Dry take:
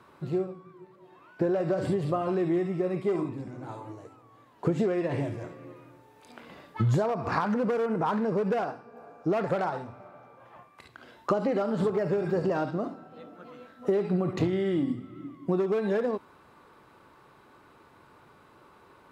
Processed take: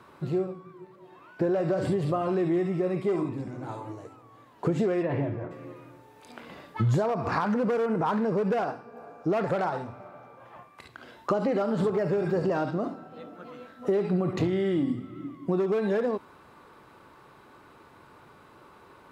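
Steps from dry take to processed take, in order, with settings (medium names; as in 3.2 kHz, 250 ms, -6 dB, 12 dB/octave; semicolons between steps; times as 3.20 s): 5.02–5.50 s: low-pass 3 kHz -> 1.5 kHz 12 dB/octave; in parallel at -1 dB: peak limiter -25.5 dBFS, peak gain reduction 11.5 dB; on the sum: trim -2.5 dB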